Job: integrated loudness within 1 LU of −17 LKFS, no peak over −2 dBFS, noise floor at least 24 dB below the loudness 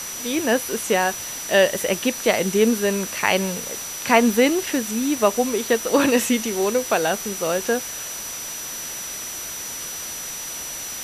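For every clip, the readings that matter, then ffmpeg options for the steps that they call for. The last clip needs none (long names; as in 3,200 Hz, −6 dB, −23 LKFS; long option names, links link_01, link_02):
interfering tone 5,900 Hz; level of the tone −32 dBFS; background noise floor −32 dBFS; target noise floor −46 dBFS; integrated loudness −22.0 LKFS; sample peak −2.5 dBFS; target loudness −17.0 LKFS
→ -af "bandreject=frequency=5900:width=30"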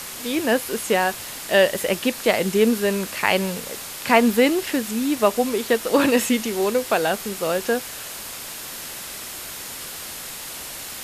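interfering tone none found; background noise floor −35 dBFS; target noise floor −47 dBFS
→ -af "afftdn=noise_reduction=12:noise_floor=-35"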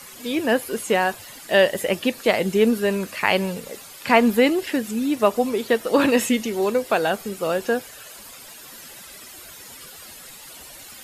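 background noise floor −42 dBFS; target noise floor −45 dBFS
→ -af "afftdn=noise_reduction=6:noise_floor=-42"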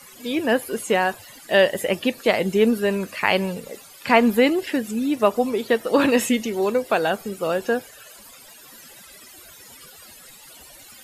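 background noise floor −46 dBFS; integrated loudness −21.5 LKFS; sample peak −3.0 dBFS; target loudness −17.0 LKFS
→ -af "volume=4.5dB,alimiter=limit=-2dB:level=0:latency=1"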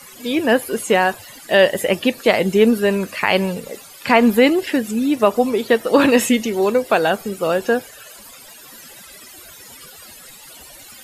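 integrated loudness −17.0 LKFS; sample peak −2.0 dBFS; background noise floor −41 dBFS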